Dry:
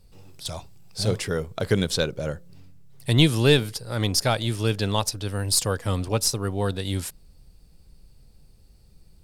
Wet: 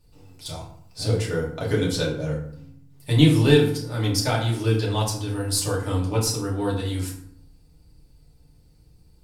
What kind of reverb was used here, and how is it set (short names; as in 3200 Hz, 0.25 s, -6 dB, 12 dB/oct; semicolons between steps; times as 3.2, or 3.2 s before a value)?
FDN reverb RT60 0.64 s, low-frequency decay 1.35×, high-frequency decay 0.6×, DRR -5 dB; gain -7 dB